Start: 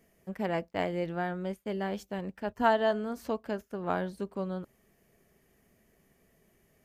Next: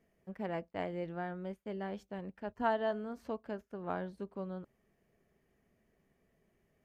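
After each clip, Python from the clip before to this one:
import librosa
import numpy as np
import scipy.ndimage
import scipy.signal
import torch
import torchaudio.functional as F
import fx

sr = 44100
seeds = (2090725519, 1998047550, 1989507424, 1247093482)

y = fx.lowpass(x, sr, hz=2700.0, slope=6)
y = F.gain(torch.from_numpy(y), -6.5).numpy()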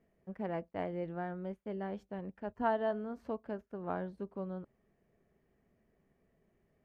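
y = fx.high_shelf(x, sr, hz=2700.0, db=-11.0)
y = F.gain(torch.from_numpy(y), 1.0).numpy()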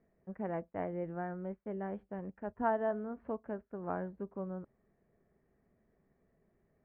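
y = scipy.signal.sosfilt(scipy.signal.butter(4, 2100.0, 'lowpass', fs=sr, output='sos'), x)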